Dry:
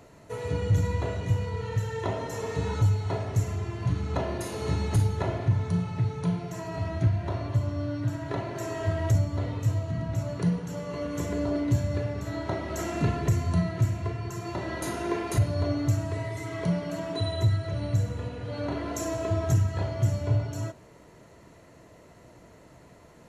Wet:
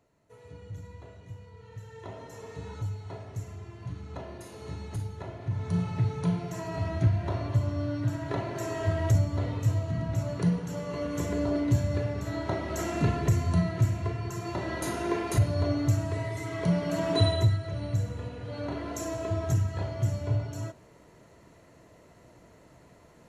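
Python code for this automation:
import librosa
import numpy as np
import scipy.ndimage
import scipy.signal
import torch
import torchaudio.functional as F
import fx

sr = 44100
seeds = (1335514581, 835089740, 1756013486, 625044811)

y = fx.gain(x, sr, db=fx.line((1.54, -18.0), (2.2, -11.0), (5.37, -11.0), (5.8, 0.0), (16.6, 0.0), (17.22, 6.5), (17.59, -3.0)))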